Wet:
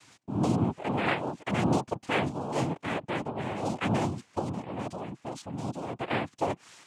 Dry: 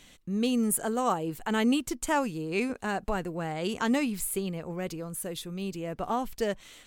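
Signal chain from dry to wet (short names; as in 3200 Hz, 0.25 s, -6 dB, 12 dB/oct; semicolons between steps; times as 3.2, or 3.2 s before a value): dynamic EQ 3700 Hz, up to -8 dB, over -50 dBFS, Q 0.98; downsampling 11025 Hz; noise vocoder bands 4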